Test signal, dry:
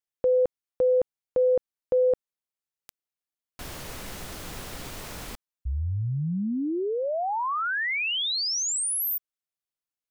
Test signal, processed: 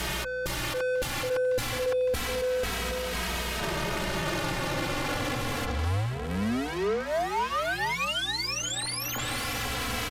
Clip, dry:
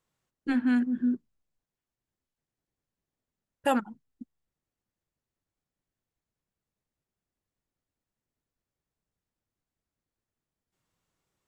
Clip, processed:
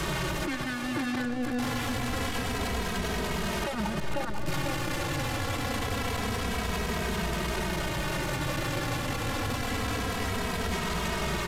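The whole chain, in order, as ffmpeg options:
ffmpeg -i in.wav -filter_complex "[0:a]aeval=exprs='val(0)+0.5*0.0266*sgn(val(0))':channel_layout=same,acrossover=split=99|730|3600[link_01][link_02][link_03][link_04];[link_01]acompressor=threshold=-47dB:ratio=4[link_05];[link_02]acompressor=threshold=-34dB:ratio=4[link_06];[link_03]acompressor=threshold=-42dB:ratio=4[link_07];[link_04]acompressor=threshold=-53dB:ratio=4[link_08];[link_05][link_06][link_07][link_08]amix=inputs=4:normalize=0,asplit=2[link_09][link_10];[link_10]adelay=495,lowpass=frequency=4400:poles=1,volume=-5dB,asplit=2[link_11][link_12];[link_12]adelay=495,lowpass=frequency=4400:poles=1,volume=0.33,asplit=2[link_13][link_14];[link_14]adelay=495,lowpass=frequency=4400:poles=1,volume=0.33,asplit=2[link_15][link_16];[link_16]adelay=495,lowpass=frequency=4400:poles=1,volume=0.33[link_17];[link_09][link_11][link_13][link_15][link_17]amix=inputs=5:normalize=0,aeval=exprs='0.141*sin(PI/2*2.82*val(0)/0.141)':channel_layout=same,lowshelf=frequency=210:gain=6,apsyclip=29.5dB,aresample=32000,aresample=44100,agate=range=-15dB:threshold=-2dB:ratio=16:release=56:detection=rms,aeval=exprs='val(0)+0.0447*(sin(2*PI*60*n/s)+sin(2*PI*2*60*n/s)/2+sin(2*PI*3*60*n/s)/3+sin(2*PI*4*60*n/s)/4+sin(2*PI*5*60*n/s)/5)':channel_layout=same,areverse,acompressor=threshold=-21dB:ratio=8:attack=7:release=29:knee=1:detection=peak,areverse,highshelf=frequency=9000:gain=-5,asplit=2[link_18][link_19];[link_19]adelay=2.8,afreqshift=-0.26[link_20];[link_18][link_20]amix=inputs=2:normalize=1,volume=-5.5dB" out.wav

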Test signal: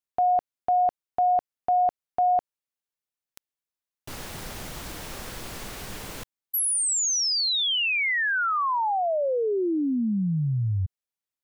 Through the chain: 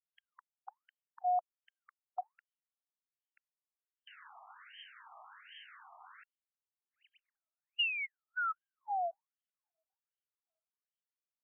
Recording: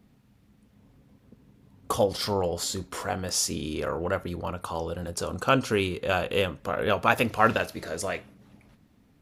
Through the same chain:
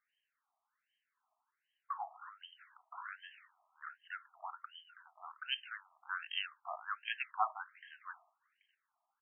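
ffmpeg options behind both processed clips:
ffmpeg -i in.wav -af "aresample=16000,aresample=44100,aexciter=amount=15.2:drive=9.7:freq=4000,afftfilt=real='re*between(b*sr/1024,900*pow(2300/900,0.5+0.5*sin(2*PI*1.3*pts/sr))/1.41,900*pow(2300/900,0.5+0.5*sin(2*PI*1.3*pts/sr))*1.41)':imag='im*between(b*sr/1024,900*pow(2300/900,0.5+0.5*sin(2*PI*1.3*pts/sr))/1.41,900*pow(2300/900,0.5+0.5*sin(2*PI*1.3*pts/sr))*1.41)':win_size=1024:overlap=0.75,volume=-8.5dB" out.wav

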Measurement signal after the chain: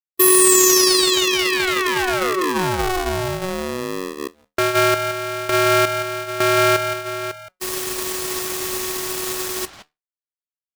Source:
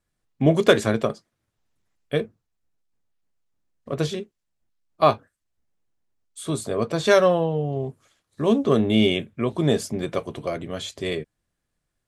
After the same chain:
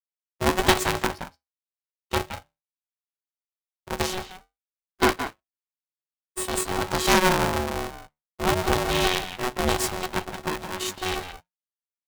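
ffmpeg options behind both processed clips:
ffmpeg -i in.wav -filter_complex "[0:a]afftfilt=real='re*gte(hypot(re,im),0.0112)':imag='im*gte(hypot(re,im),0.0112)':win_size=1024:overlap=0.75,bass=frequency=250:gain=-8,treble=frequency=4000:gain=11,asplit=2[link_01][link_02];[link_02]acompressor=threshold=-20dB:ratio=10,volume=-1dB[link_03];[link_01][link_03]amix=inputs=2:normalize=0,acrusher=bits=8:dc=4:mix=0:aa=0.000001,flanger=delay=4:depth=3.8:regen=-81:speed=0.17:shape=triangular,aeval=exprs='max(val(0),0)':channel_layout=same,asplit=2[link_04][link_05];[link_05]adelay=170,highpass=300,lowpass=3400,asoftclip=type=hard:threshold=-13dB,volume=-8dB[link_06];[link_04][link_06]amix=inputs=2:normalize=0,aeval=exprs='val(0)*sgn(sin(2*PI*370*n/s))':channel_layout=same,volume=1.5dB" out.wav

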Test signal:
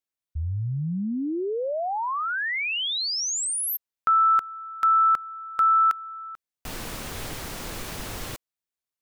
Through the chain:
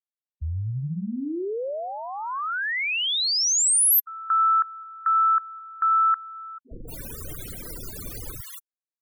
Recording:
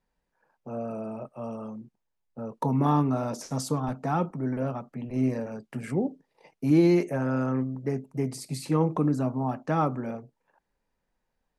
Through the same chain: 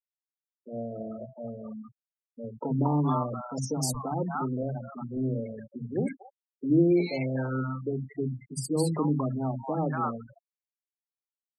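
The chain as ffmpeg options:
ffmpeg -i in.wav -filter_complex "[0:a]acrossover=split=210|800[link_01][link_02][link_03];[link_01]adelay=60[link_04];[link_03]adelay=230[link_05];[link_04][link_02][link_05]amix=inputs=3:normalize=0,crystalizer=i=1.5:c=0,afftfilt=real='re*gte(hypot(re,im),0.0316)':imag='im*gte(hypot(re,im),0.0316)':win_size=1024:overlap=0.75" out.wav

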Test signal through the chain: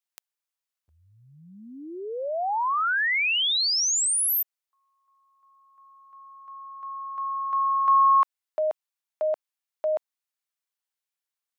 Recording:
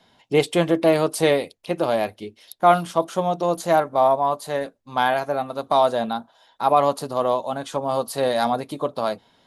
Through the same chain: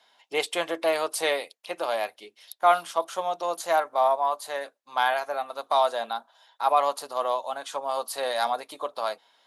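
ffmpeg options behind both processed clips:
ffmpeg -i in.wav -af "highpass=730,volume=-1.5dB" out.wav

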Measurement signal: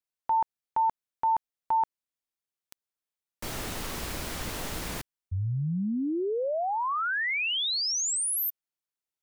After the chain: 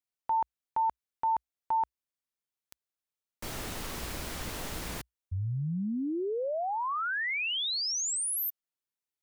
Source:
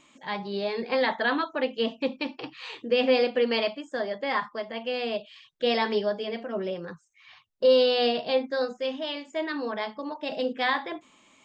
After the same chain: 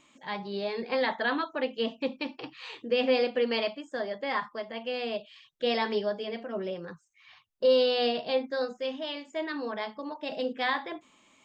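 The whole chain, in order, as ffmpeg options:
ffmpeg -i in.wav -af "equalizer=frequency=61:width_type=o:width=0.38:gain=2.5,volume=-3dB" out.wav

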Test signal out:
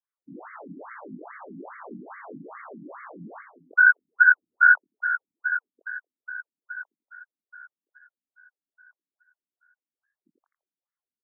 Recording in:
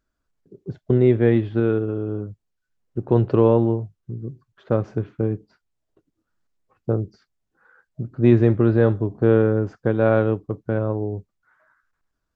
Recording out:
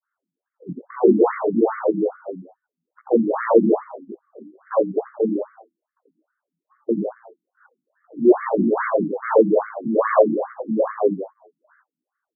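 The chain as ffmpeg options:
ffmpeg -i in.wav -filter_complex "[0:a]lowpass=2200,adynamicequalizer=threshold=0.0282:dfrequency=550:dqfactor=0.93:tfrequency=550:tqfactor=0.93:attack=5:release=100:ratio=0.375:range=3.5:mode=boostabove:tftype=bell,acontrast=20,aeval=exprs='clip(val(0),-1,0.299)':channel_layout=same,flanger=delay=16:depth=6.8:speed=2,asplit=2[link_01][link_02];[link_02]asplit=4[link_03][link_04][link_05][link_06];[link_03]adelay=84,afreqshift=83,volume=-6dB[link_07];[link_04]adelay=168,afreqshift=166,volume=-14.6dB[link_08];[link_05]adelay=252,afreqshift=249,volume=-23.3dB[link_09];[link_06]adelay=336,afreqshift=332,volume=-31.9dB[link_10];[link_07][link_08][link_09][link_10]amix=inputs=4:normalize=0[link_11];[link_01][link_11]amix=inputs=2:normalize=0,afftfilt=real='re*between(b*sr/1024,220*pow(1600/220,0.5+0.5*sin(2*PI*2.4*pts/sr))/1.41,220*pow(1600/220,0.5+0.5*sin(2*PI*2.4*pts/sr))*1.41)':imag='im*between(b*sr/1024,220*pow(1600/220,0.5+0.5*sin(2*PI*2.4*pts/sr))/1.41,220*pow(1600/220,0.5+0.5*sin(2*PI*2.4*pts/sr))*1.41)':win_size=1024:overlap=0.75,volume=3.5dB" out.wav

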